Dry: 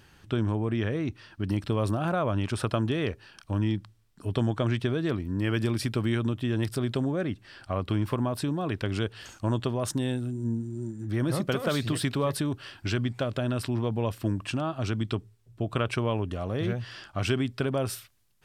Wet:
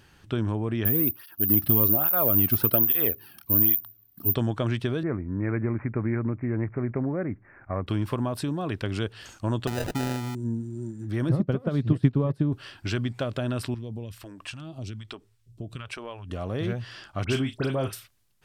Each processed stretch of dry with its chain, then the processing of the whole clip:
0.85–4.35 low shelf 340 Hz +7 dB + careless resampling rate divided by 3×, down filtered, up zero stuff + tape flanging out of phase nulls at 1.2 Hz, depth 2.2 ms
5.03–7.87 sample sorter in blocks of 8 samples + steep low-pass 2300 Hz 96 dB/oct
9.67–10.35 high shelf 7700 Hz +3.5 dB + sample-rate reducer 1100 Hz
11.29–12.53 HPF 100 Hz + tilt -4.5 dB/oct + upward expander 2.5:1, over -26 dBFS
13.74–16.3 compressor 2.5:1, threshold -34 dBFS + phaser stages 2, 1.2 Hz, lowest notch 110–1600 Hz
17.24–17.93 doubler 38 ms -10.5 dB + dispersion highs, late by 67 ms, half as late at 2300 Hz
whole clip: dry

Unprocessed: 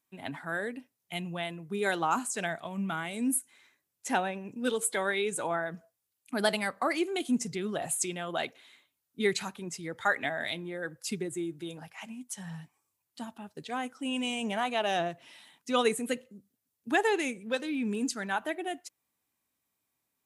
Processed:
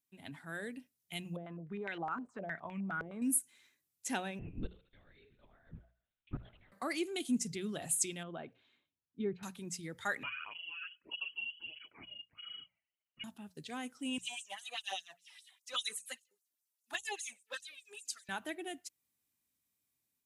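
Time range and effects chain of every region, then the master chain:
1.36–3.22 compressor 3:1, threshold -33 dBFS + stepped low-pass 9.7 Hz 490–2300 Hz
4.39–6.72 flipped gate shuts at -22 dBFS, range -28 dB + thinning echo 73 ms, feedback 66%, high-pass 610 Hz, level -14.5 dB + LPC vocoder at 8 kHz whisper
8.23–9.43 treble ducked by the level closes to 1300 Hz, closed at -26.5 dBFS + tape spacing loss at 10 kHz 32 dB + notch 2000 Hz, Q 8.1
10.23–13.24 inverted band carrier 3100 Hz + tape flanging out of phase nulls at 1.6 Hz, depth 2.8 ms
14.18–18.29 dynamic EQ 2300 Hz, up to -8 dB, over -55 dBFS, Q 7.4 + LFO high-pass sine 5 Hz 730–7700 Hz + envelope flanger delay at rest 3.2 ms, full sweep at -23.5 dBFS
whole clip: bell 830 Hz -10.5 dB 2.7 oct; notches 60/120/180 Hz; AGC gain up to 4.5 dB; gain -5.5 dB

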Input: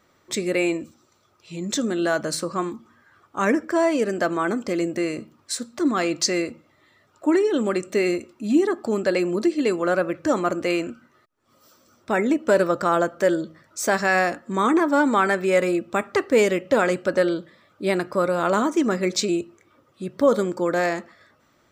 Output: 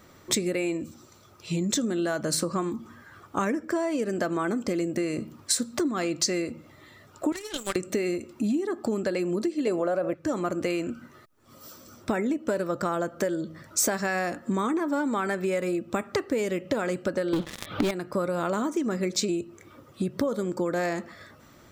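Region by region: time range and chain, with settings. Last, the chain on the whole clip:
7.32–7.76 weighting filter ITU-R 468 + power-law curve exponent 2
9.67–10.14 bell 640 Hz +11.5 dB 1 oct + fast leveller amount 50%
17.33–17.91 resonant high shelf 5100 Hz -14 dB, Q 3 + sample leveller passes 5 + upward compressor, threshold -18 dBFS
whole clip: low shelf 300 Hz +7.5 dB; compressor 10:1, threshold -30 dBFS; high shelf 7500 Hz +7.5 dB; gain +5.5 dB

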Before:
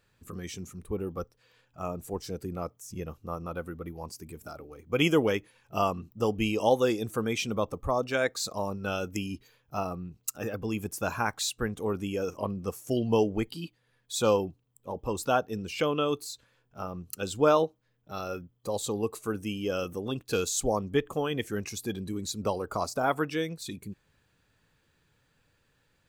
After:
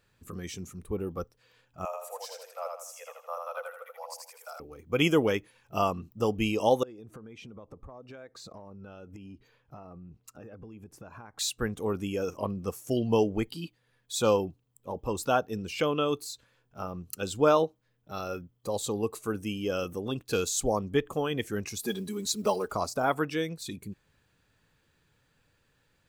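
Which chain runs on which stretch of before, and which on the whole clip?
1.85–4.6 steep high-pass 500 Hz 96 dB/oct + feedback echo 81 ms, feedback 39%, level -3.5 dB
6.83–11.39 LPF 1100 Hz 6 dB/oct + compressor 20:1, threshold -42 dBFS + mismatched tape noise reduction encoder only
21.79–22.72 block floating point 7-bit + tone controls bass -6 dB, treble +3 dB + comb 4.8 ms, depth 100%
whole clip: dry

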